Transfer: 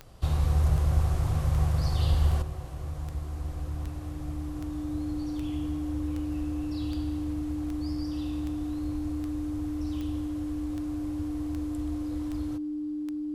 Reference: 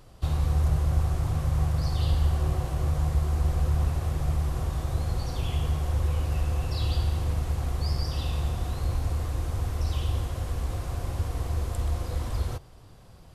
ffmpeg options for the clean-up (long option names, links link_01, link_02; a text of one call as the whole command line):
ffmpeg -i in.wav -af "adeclick=threshold=4,bandreject=frequency=300:width=30,asetnsamples=nb_out_samples=441:pad=0,asendcmd='2.42 volume volume 9.5dB',volume=0dB" out.wav